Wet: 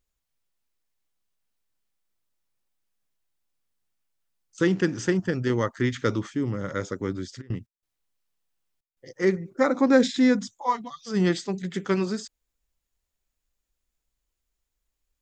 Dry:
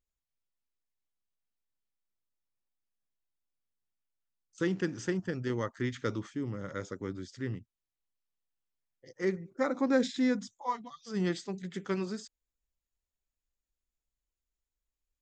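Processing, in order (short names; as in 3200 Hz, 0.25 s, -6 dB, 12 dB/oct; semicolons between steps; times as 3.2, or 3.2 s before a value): 7.4–9.1 step gate ".x.xxxxxx" 92 bpm -24 dB; gain +8.5 dB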